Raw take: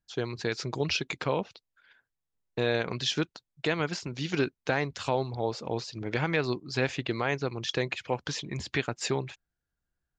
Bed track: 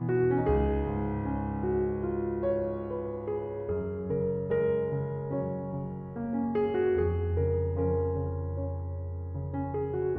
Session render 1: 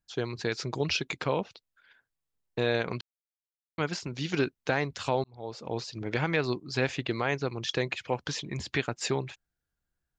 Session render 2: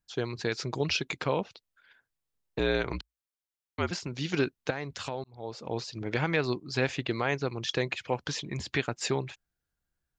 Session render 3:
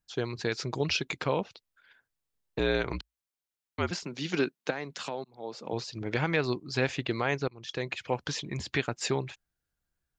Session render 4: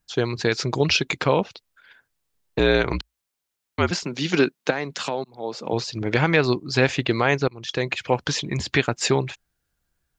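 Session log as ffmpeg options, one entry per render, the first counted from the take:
ffmpeg -i in.wav -filter_complex "[0:a]asplit=4[link_01][link_02][link_03][link_04];[link_01]atrim=end=3.01,asetpts=PTS-STARTPTS,afade=type=out:start_time=3.006:duration=0.004:curve=hsin[link_05];[link_02]atrim=start=3.01:end=3.78,asetpts=PTS-STARTPTS,volume=0[link_06];[link_03]atrim=start=3.78:end=5.24,asetpts=PTS-STARTPTS,afade=type=in:duration=0.004:curve=hsin,afade=type=out:start_time=1.456:duration=0.004:curve=hsin[link_07];[link_04]atrim=start=5.24,asetpts=PTS-STARTPTS,afade=type=in:duration=0.59[link_08];[link_05][link_06][link_07][link_08]concat=n=4:v=0:a=1" out.wav
ffmpeg -i in.wav -filter_complex "[0:a]asettb=1/sr,asplit=3[link_01][link_02][link_03];[link_01]atrim=end=2.594[link_04];[link_02]atrim=start=2.59:end=3.91,asetpts=PTS-STARTPTS,afade=type=in:duration=0.004:curve=qsin,afade=type=out:start_time=1.316:duration=0.004:curve=qsin,afreqshift=-57[link_05];[link_03]atrim=start=3.906[link_06];[link_04][link_05]acrossfade=duration=0.004:curve1=hsin:curve2=qsin[link_07];[link_07][link_06]acrossfade=duration=0.004:curve1=qsin:curve2=hsin,asettb=1/sr,asplit=3[link_08][link_09][link_10];[link_08]atrim=end=4.704[link_11];[link_09]atrim=start=4.7:end=5.36,asetpts=PTS-STARTPTS,afade=type=in:duration=0.004:curve=qsin,afade=type=out:start_time=0.656:duration=0.004:curve=qsin,acompressor=threshold=-33dB:ratio=2.5:attack=3.2:release=140:knee=1:detection=peak[link_12];[link_10]atrim=start=5.356[link_13];[link_11][link_12]acrossfade=duration=0.004:curve1=hsin:curve2=qsin[link_14];[link_14][link_13]acrossfade=duration=0.004:curve1=qsin:curve2=hsin" out.wav
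ffmpeg -i in.wav -filter_complex "[0:a]asettb=1/sr,asplit=3[link_01][link_02][link_03];[link_01]atrim=end=4.034[link_04];[link_02]atrim=start=4.03:end=5.73,asetpts=PTS-STARTPTS,afade=type=in:duration=0.004:curve=qsin,afade=type=out:start_time=1.696:duration=0.004:curve=qsin,highpass=frequency=160:width=0.5412,highpass=frequency=160:width=1.3066[link_05];[link_03]atrim=start=5.726[link_06];[link_04][link_05]acrossfade=duration=0.004:curve1=hsin:curve2=qsin[link_07];[link_07][link_06]acrossfade=duration=0.004:curve1=qsin:curve2=hsin,asplit=2[link_08][link_09];[link_08]atrim=end=7.48,asetpts=PTS-STARTPTS,afade=type=out:start_time=7.476:duration=0.004:curve=hsin:silence=0.0841395[link_10];[link_09]atrim=start=7.48,asetpts=PTS-STARTPTS,afade=type=in:duration=0.57:silence=0.0841395[link_11];[link_10][link_11]concat=n=2:v=0:a=1" out.wav
ffmpeg -i in.wav -af "volume=9dB" out.wav

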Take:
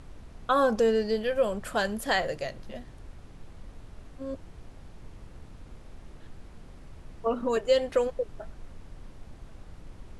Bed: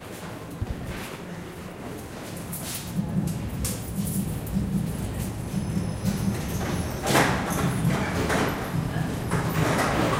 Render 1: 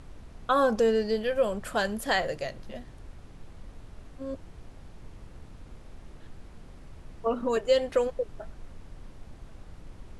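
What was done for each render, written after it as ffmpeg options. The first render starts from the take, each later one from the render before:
ffmpeg -i in.wav -af anull out.wav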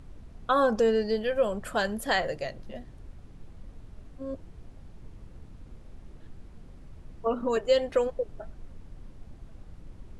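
ffmpeg -i in.wav -af "afftdn=noise_reduction=6:noise_floor=-49" out.wav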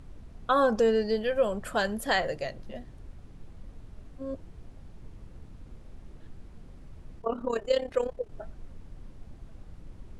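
ffmpeg -i in.wav -filter_complex "[0:a]asplit=3[link_01][link_02][link_03];[link_01]afade=type=out:start_time=7.19:duration=0.02[link_04];[link_02]tremolo=f=34:d=0.75,afade=type=in:start_time=7.19:duration=0.02,afade=type=out:start_time=8.3:duration=0.02[link_05];[link_03]afade=type=in:start_time=8.3:duration=0.02[link_06];[link_04][link_05][link_06]amix=inputs=3:normalize=0" out.wav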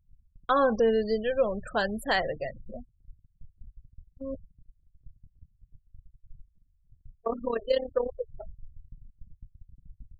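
ffmpeg -i in.wav -af "afftfilt=real='re*gte(hypot(re,im),0.0224)':imag='im*gte(hypot(re,im),0.0224)':win_size=1024:overlap=0.75,agate=range=-20dB:threshold=-41dB:ratio=16:detection=peak" out.wav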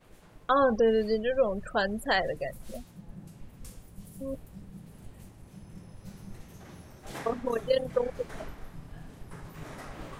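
ffmpeg -i in.wav -i bed.wav -filter_complex "[1:a]volume=-20.5dB[link_01];[0:a][link_01]amix=inputs=2:normalize=0" out.wav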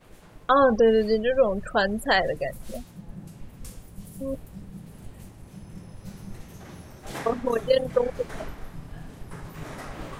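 ffmpeg -i in.wav -af "volume=5dB" out.wav

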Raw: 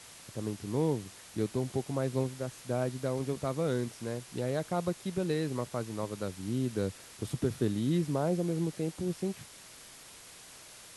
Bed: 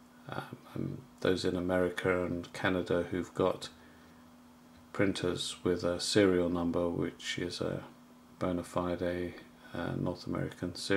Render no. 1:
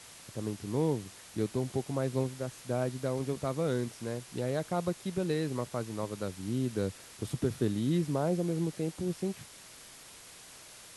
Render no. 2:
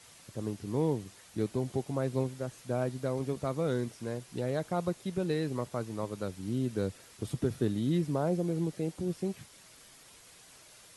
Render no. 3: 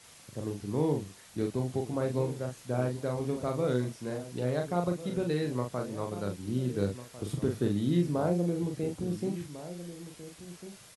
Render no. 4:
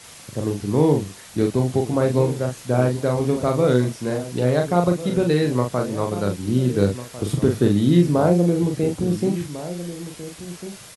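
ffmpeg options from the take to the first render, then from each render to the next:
ffmpeg -i in.wav -af anull out.wav
ffmpeg -i in.wav -af "afftdn=noise_reduction=6:noise_floor=-52" out.wav
ffmpeg -i in.wav -filter_complex "[0:a]asplit=2[link_01][link_02];[link_02]adelay=40,volume=-4.5dB[link_03];[link_01][link_03]amix=inputs=2:normalize=0,asplit=2[link_04][link_05];[link_05]adelay=1399,volume=-13dB,highshelf=frequency=4000:gain=-31.5[link_06];[link_04][link_06]amix=inputs=2:normalize=0" out.wav
ffmpeg -i in.wav -af "volume=11.5dB" out.wav

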